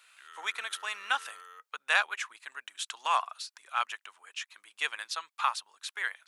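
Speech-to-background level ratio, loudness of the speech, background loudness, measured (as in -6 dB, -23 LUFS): 17.0 dB, -33.0 LUFS, -50.0 LUFS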